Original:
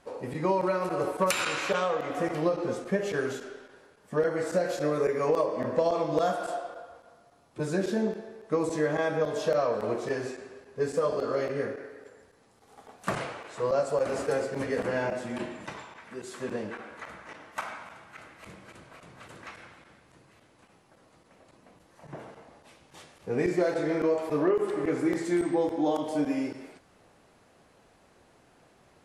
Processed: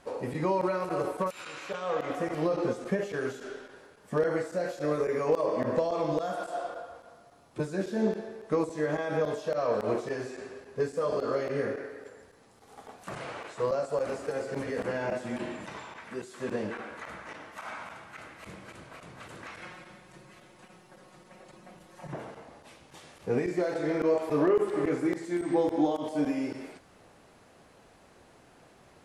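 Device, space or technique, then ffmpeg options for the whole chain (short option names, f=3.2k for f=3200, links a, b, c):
de-esser from a sidechain: -filter_complex "[0:a]asplit=2[a][b];[b]highpass=4.9k,apad=whole_len=1280999[c];[a][c]sidechaincompress=threshold=-54dB:ratio=4:attack=0.61:release=84,asettb=1/sr,asplit=3[d][e][f];[d]atrim=end=19.614[g];[e]atrim=start=19.61:end=22.13,asetpts=PTS-STARTPTS,afade=t=in:d=0.004:c=qsin,afade=t=out:st=2.516:d=0.004:c=qsin,aecho=1:1:5.5:0.96,atrim=end_sample=111132[h];[f]atrim=start=22.126[i];[g][h]acrossfade=d=0.004:c1=hsin:c2=qsin[j];[j][i]acrossfade=d=0.004:c1=qsin:c2=hsin,volume=3dB"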